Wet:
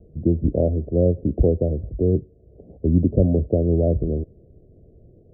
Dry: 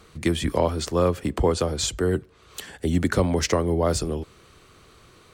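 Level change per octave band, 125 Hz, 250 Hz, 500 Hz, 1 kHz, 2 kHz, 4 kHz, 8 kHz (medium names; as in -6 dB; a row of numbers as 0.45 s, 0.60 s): +6.0 dB, +4.0 dB, +1.5 dB, under -10 dB, under -40 dB, under -40 dB, under -40 dB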